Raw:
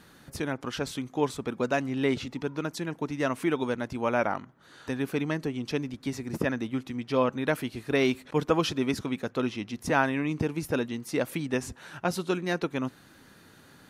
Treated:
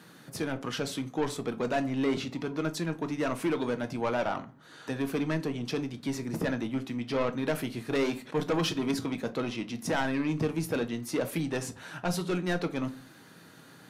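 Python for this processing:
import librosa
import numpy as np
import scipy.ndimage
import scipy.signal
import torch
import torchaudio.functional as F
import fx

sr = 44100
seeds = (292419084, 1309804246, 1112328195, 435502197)

y = scipy.signal.sosfilt(scipy.signal.butter(4, 110.0, 'highpass', fs=sr, output='sos'), x)
y = 10.0 ** (-24.5 / 20.0) * np.tanh(y / 10.0 ** (-24.5 / 20.0))
y = fx.room_shoebox(y, sr, seeds[0], volume_m3=190.0, walls='furnished', distance_m=0.58)
y = y * librosa.db_to_amplitude(1.0)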